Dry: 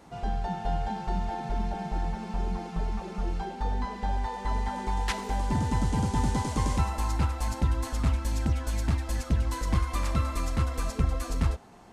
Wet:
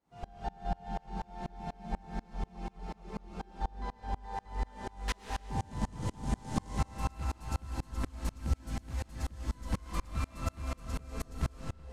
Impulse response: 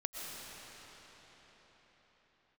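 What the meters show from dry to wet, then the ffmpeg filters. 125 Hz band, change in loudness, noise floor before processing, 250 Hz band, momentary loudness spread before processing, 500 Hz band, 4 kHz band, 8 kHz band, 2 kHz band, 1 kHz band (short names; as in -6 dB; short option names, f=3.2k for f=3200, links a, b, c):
-9.5 dB, -9.0 dB, -41 dBFS, -8.5 dB, 6 LU, -8.5 dB, -8.0 dB, -8.5 dB, -7.5 dB, -8.0 dB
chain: -filter_complex "[0:a]aeval=exprs='clip(val(0),-1,0.075)':c=same[a];[1:a]atrim=start_sample=2205,afade=t=out:st=0.44:d=0.01,atrim=end_sample=19845[b];[a][b]afir=irnorm=-1:irlink=0,aeval=exprs='val(0)*pow(10,-31*if(lt(mod(-4.1*n/s,1),2*abs(-4.1)/1000),1-mod(-4.1*n/s,1)/(2*abs(-4.1)/1000),(mod(-4.1*n/s,1)-2*abs(-4.1)/1000)/(1-2*abs(-4.1)/1000))/20)':c=same"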